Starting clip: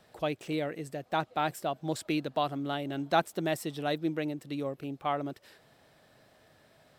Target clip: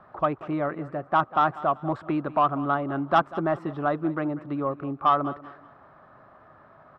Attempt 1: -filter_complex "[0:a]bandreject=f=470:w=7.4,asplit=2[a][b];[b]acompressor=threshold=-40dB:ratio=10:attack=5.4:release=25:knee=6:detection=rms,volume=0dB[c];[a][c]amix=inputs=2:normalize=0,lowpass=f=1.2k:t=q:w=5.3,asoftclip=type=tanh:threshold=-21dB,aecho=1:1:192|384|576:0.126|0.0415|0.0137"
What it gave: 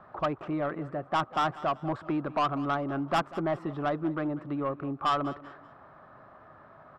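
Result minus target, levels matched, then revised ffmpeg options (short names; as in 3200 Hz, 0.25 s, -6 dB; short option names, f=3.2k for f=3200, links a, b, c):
compressor: peak gain reduction +8.5 dB; soft clip: distortion +10 dB
-filter_complex "[0:a]bandreject=f=470:w=7.4,asplit=2[a][b];[b]acompressor=threshold=-30.5dB:ratio=10:attack=5.4:release=25:knee=6:detection=rms,volume=0dB[c];[a][c]amix=inputs=2:normalize=0,lowpass=f=1.2k:t=q:w=5.3,asoftclip=type=tanh:threshold=-10dB,aecho=1:1:192|384|576:0.126|0.0415|0.0137"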